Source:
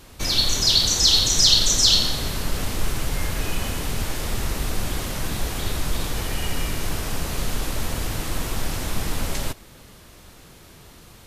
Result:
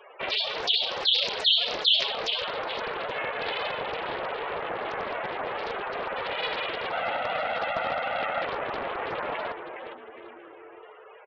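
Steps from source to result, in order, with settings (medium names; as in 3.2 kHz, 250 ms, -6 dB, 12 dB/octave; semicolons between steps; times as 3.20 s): 6.92–8.46 s: comb 1.5 ms, depth 86%; frequency-shifting echo 413 ms, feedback 39%, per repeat -100 Hz, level -8 dB; mistuned SSB +53 Hz 380–3200 Hz; loudest bins only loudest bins 32; loudspeaker Doppler distortion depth 0.42 ms; trim +5.5 dB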